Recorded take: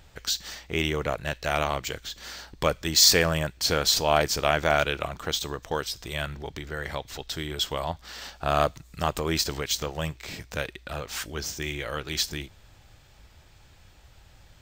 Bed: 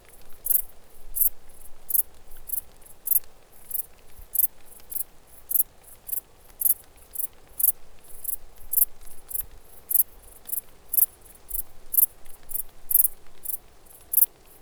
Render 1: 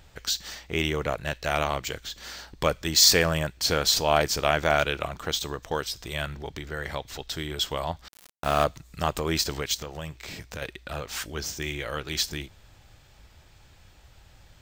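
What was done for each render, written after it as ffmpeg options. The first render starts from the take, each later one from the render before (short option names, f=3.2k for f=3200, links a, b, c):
-filter_complex "[0:a]asettb=1/sr,asplit=3[a][b][c];[a]atrim=end=8.084[d];[b]atrim=start=8.08:end=8.64,asetpts=PTS-STARTPTS,afade=t=in:d=0.004:c=qsin,afade=t=out:st=0.556:d=0.004:c=qsin,aeval=exprs='val(0)*gte(abs(val(0)),0.0282)':c=same[e];[c]atrim=start=8.636[f];[d][e]acrossfade=d=0.004:c1=hsin:c2=qsin[g];[g][f]acrossfade=d=0.004:c1=qsin:c2=hsin,asettb=1/sr,asplit=3[h][i][j];[h]atrim=end=9.744[k];[i]atrim=start=9.74:end=10.62,asetpts=PTS-STARTPTS,afade=t=in:d=0.004:c=qsin,afade=t=out:st=0.876:d=0.004:c=qsin,acompressor=threshold=-34dB:ratio=2.5:attack=3.2:release=140:knee=1:detection=peak[l];[j]atrim=start=10.616[m];[k][l]acrossfade=d=0.004:c1=hsin:c2=qsin[n];[n][m]acrossfade=d=0.004:c1=qsin:c2=hsin"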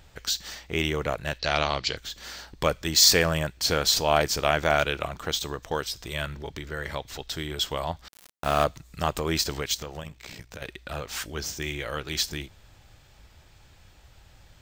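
-filter_complex "[0:a]asettb=1/sr,asplit=3[a][b][c];[a]atrim=end=1.394[d];[b]atrim=start=1.39:end=1.97,asetpts=PTS-STARTPTS,afade=t=in:d=0.004:c=qsin,afade=t=out:st=0.576:d=0.004:c=qsin,lowpass=f=4.6k:t=q:w=4.4[e];[c]atrim=start=1.966[f];[d][e]acrossfade=d=0.004:c1=hsin:c2=qsin[g];[g][f]acrossfade=d=0.004:c1=qsin:c2=hsin,asettb=1/sr,asplit=3[h][i][j];[h]atrim=end=6.104[k];[i]atrim=start=6.1:end=6.95,asetpts=PTS-STARTPTS,afade=t=in:d=0.004:c=qsin,afade=t=out:st=0.846:d=0.004:c=qsin,asuperstop=centerf=750:order=4:qfactor=7.2[l];[j]atrim=start=6.946[m];[k][l]acrossfade=d=0.004:c1=hsin:c2=qsin[n];[n][m]acrossfade=d=0.004:c1=qsin:c2=hsin,asplit=3[o][p][q];[o]afade=t=out:st=10:d=0.02[r];[p]tremolo=f=61:d=0.788,afade=t=in:st=10:d=0.02,afade=t=out:st=10.65:d=0.02[s];[q]afade=t=in:st=10.65:d=0.02[t];[r][s][t]amix=inputs=3:normalize=0"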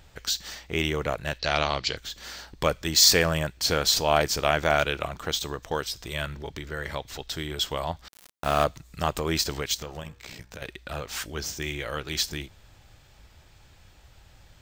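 -filter_complex "[0:a]asettb=1/sr,asplit=3[a][b][c];[a]atrim=end=9.824[d];[b]atrim=start=9.82:end=10.62,asetpts=PTS-STARTPTS,afade=t=in:d=0.004:c=qsin,afade=t=out:st=0.796:d=0.004:c=qsin,bandreject=f=95.81:t=h:w=4,bandreject=f=191.62:t=h:w=4,bandreject=f=287.43:t=h:w=4,bandreject=f=383.24:t=h:w=4,bandreject=f=479.05:t=h:w=4,bandreject=f=574.86:t=h:w=4,bandreject=f=670.67:t=h:w=4,bandreject=f=766.48:t=h:w=4,bandreject=f=862.29:t=h:w=4,bandreject=f=958.1:t=h:w=4,bandreject=f=1.05391k:t=h:w=4,bandreject=f=1.14972k:t=h:w=4,bandreject=f=1.24553k:t=h:w=4,bandreject=f=1.34134k:t=h:w=4,bandreject=f=1.43715k:t=h:w=4,bandreject=f=1.53296k:t=h:w=4,bandreject=f=1.62877k:t=h:w=4,bandreject=f=1.72458k:t=h:w=4,bandreject=f=1.82039k:t=h:w=4[e];[c]atrim=start=10.616[f];[d][e]acrossfade=d=0.004:c1=hsin:c2=qsin[g];[g][f]acrossfade=d=0.004:c1=qsin:c2=hsin"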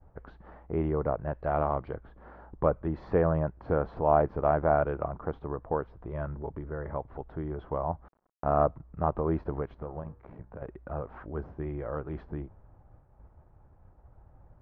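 -af "lowpass=f=1.1k:w=0.5412,lowpass=f=1.1k:w=1.3066,agate=range=-33dB:threshold=-51dB:ratio=3:detection=peak"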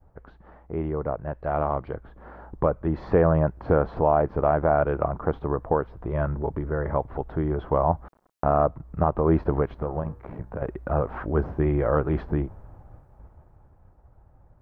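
-af "dynaudnorm=f=210:g=21:m=15dB,alimiter=limit=-8.5dB:level=0:latency=1:release=323"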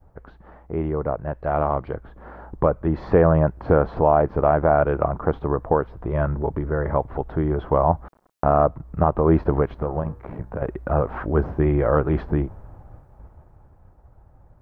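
-af "volume=3.5dB"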